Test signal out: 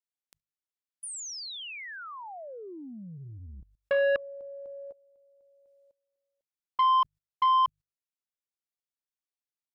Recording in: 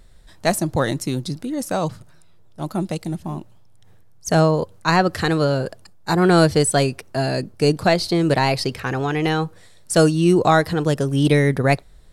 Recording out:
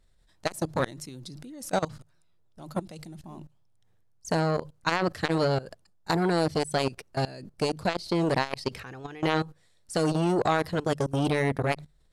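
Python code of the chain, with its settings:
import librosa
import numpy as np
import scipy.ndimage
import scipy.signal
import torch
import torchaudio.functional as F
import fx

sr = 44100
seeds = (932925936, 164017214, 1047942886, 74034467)

y = fx.high_shelf(x, sr, hz=11000.0, db=-8.5)
y = fx.hum_notches(y, sr, base_hz=50, count=3)
y = fx.level_steps(y, sr, step_db=21)
y = fx.high_shelf(y, sr, hz=3000.0, db=4.0)
y = fx.transformer_sat(y, sr, knee_hz=1000.0)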